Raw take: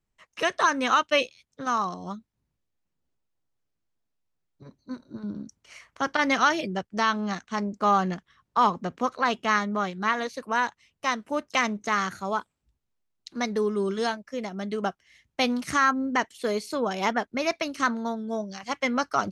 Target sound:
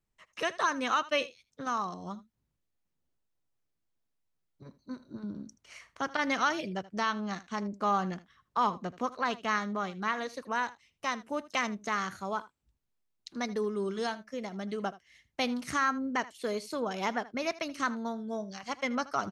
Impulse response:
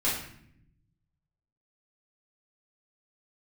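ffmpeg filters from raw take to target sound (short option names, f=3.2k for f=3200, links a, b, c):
-filter_complex "[0:a]asplit=2[a][b];[b]acompressor=threshold=-37dB:ratio=6,volume=-2.5dB[c];[a][c]amix=inputs=2:normalize=0,aecho=1:1:79:0.119,volume=-7.5dB"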